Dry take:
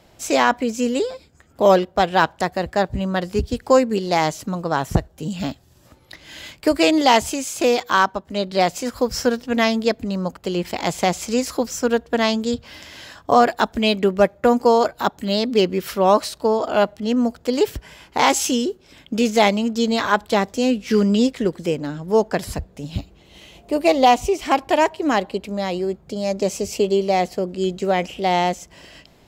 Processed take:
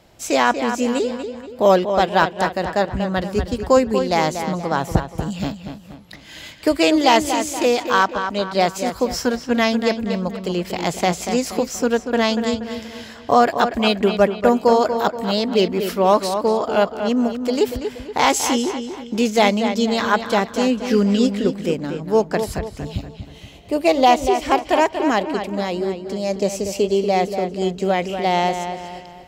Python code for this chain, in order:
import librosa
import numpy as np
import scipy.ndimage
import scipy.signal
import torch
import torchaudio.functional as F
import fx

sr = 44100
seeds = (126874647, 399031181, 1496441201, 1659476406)

y = fx.echo_filtered(x, sr, ms=238, feedback_pct=44, hz=4500.0, wet_db=-8)